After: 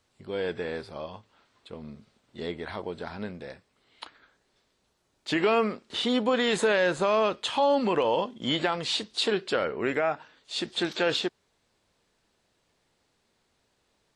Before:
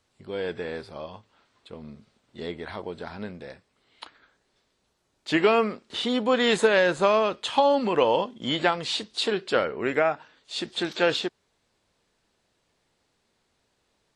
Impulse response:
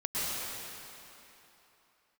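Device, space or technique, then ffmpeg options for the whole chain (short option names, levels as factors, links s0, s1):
clipper into limiter: -af "asoftclip=type=hard:threshold=0.398,alimiter=limit=0.178:level=0:latency=1:release=47"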